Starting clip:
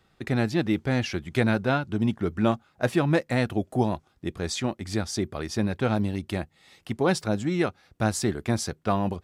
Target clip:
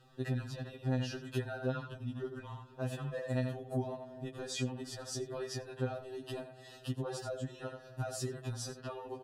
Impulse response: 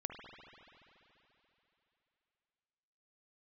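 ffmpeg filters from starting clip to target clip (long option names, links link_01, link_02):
-filter_complex "[0:a]asuperstop=centerf=2200:order=20:qfactor=5.7,lowshelf=frequency=160:gain=4,aecho=1:1:87:0.211,alimiter=limit=-20dB:level=0:latency=1:release=13,equalizer=frequency=550:width_type=o:width=1.3:gain=4,asplit=2[link_01][link_02];[1:a]atrim=start_sample=2205[link_03];[link_02][link_03]afir=irnorm=-1:irlink=0,volume=-16.5dB[link_04];[link_01][link_04]amix=inputs=2:normalize=0,acompressor=threshold=-34dB:ratio=10,afftfilt=real='re*2.45*eq(mod(b,6),0)':imag='im*2.45*eq(mod(b,6),0)':win_size=2048:overlap=0.75,volume=1dB"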